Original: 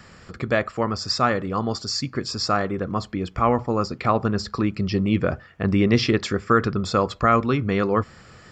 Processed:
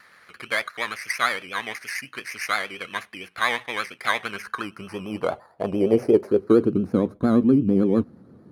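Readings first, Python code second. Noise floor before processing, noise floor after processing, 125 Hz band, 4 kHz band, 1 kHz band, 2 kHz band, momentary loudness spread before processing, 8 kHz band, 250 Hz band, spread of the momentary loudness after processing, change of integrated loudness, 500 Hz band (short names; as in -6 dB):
-49 dBFS, -55 dBFS, -7.5 dB, -4.0 dB, -6.0 dB, +2.5 dB, 8 LU, -3.5 dB, +0.5 dB, 14 LU, -1.0 dB, 0.0 dB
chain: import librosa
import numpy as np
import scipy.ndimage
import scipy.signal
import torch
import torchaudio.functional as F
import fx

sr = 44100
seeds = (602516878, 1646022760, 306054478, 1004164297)

y = fx.bit_reversed(x, sr, seeds[0], block=16)
y = fx.filter_sweep_bandpass(y, sr, from_hz=2000.0, to_hz=260.0, start_s=4.15, end_s=6.92, q=2.5)
y = fx.vibrato(y, sr, rate_hz=8.7, depth_cents=83.0)
y = y * librosa.db_to_amplitude(9.0)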